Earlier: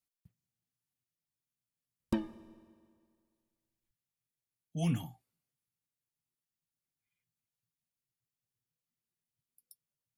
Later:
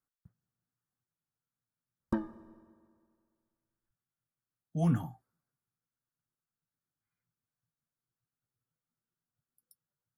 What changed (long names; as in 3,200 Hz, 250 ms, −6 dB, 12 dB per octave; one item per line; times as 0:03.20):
speech +3.5 dB
master: add high shelf with overshoot 1,900 Hz −9 dB, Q 3